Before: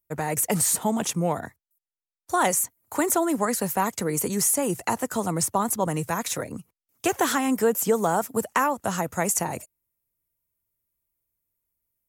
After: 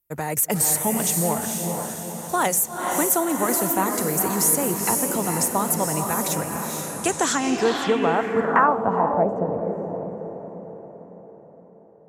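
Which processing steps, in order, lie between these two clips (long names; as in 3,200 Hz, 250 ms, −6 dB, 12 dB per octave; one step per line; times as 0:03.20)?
feedback delay with all-pass diffusion 473 ms, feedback 52%, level −3.5 dB
low-pass filter sweep 14,000 Hz → 520 Hz, 0:06.76–0:09.41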